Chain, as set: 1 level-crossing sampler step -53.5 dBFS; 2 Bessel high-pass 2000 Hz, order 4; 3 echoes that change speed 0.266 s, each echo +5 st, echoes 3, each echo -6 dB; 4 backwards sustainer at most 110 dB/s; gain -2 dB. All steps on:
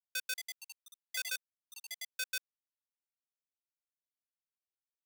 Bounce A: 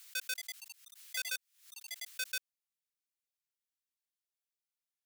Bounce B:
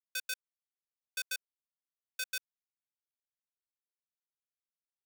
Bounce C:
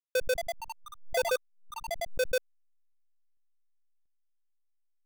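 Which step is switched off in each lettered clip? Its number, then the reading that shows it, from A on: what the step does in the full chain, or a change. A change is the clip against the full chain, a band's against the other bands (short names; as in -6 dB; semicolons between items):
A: 1, distortion -28 dB; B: 3, momentary loudness spread change -10 LU; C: 2, 500 Hz band +31.0 dB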